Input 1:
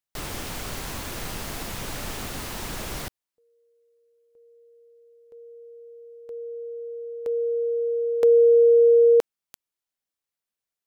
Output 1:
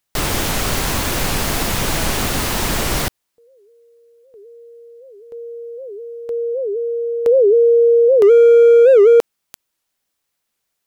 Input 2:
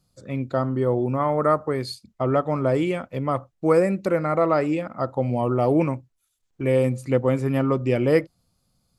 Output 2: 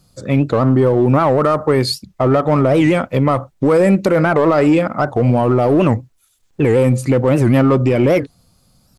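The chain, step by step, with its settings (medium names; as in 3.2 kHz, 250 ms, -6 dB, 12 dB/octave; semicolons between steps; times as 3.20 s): in parallel at -5 dB: hard clipper -22 dBFS; on the sum: loudness maximiser +14.5 dB; warped record 78 rpm, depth 250 cents; trim -4.5 dB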